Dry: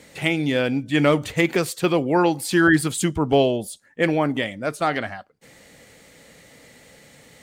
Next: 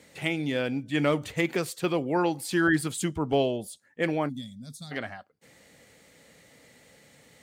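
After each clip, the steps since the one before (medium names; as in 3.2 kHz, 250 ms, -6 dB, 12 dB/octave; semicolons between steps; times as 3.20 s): time-frequency box 4.29–4.92 s, 260–3300 Hz -26 dB; high-pass 52 Hz; trim -7 dB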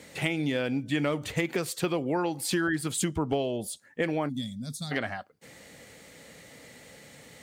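compression 6:1, threshold -31 dBFS, peak gain reduction 11.5 dB; trim +6 dB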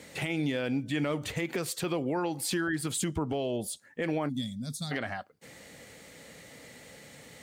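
peak limiter -21.5 dBFS, peak gain reduction 8.5 dB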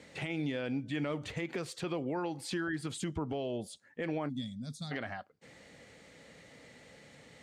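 distance through air 67 m; trim -4.5 dB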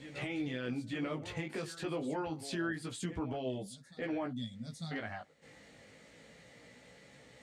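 reverse echo 900 ms -12.5 dB; chorus 0.27 Hz, delay 15.5 ms, depth 4 ms; trim +1 dB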